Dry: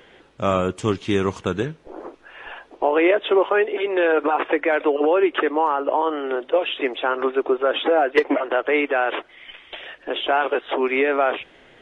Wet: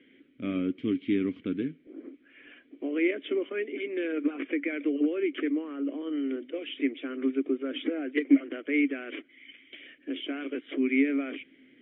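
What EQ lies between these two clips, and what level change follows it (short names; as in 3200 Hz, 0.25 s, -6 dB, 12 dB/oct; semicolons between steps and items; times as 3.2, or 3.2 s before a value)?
vowel filter i; air absorption 430 m; +6.5 dB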